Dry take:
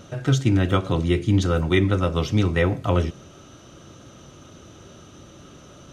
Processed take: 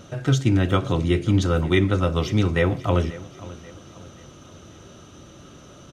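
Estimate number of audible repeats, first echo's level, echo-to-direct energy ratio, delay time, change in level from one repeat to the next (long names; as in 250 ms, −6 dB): 3, −18.0 dB, −17.0 dB, 536 ms, −7.5 dB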